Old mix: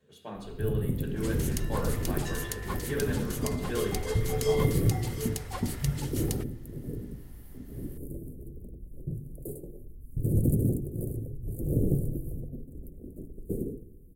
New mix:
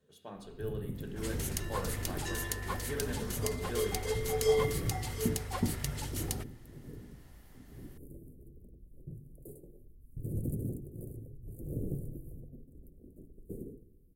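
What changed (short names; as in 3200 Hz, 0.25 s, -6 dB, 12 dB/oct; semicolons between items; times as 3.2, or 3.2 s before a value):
speech: send -7.5 dB; first sound -10.5 dB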